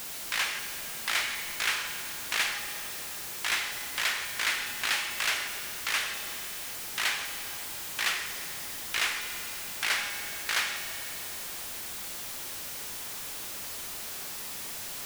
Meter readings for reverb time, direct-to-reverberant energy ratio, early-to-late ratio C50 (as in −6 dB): 2.9 s, 6.5 dB, 7.0 dB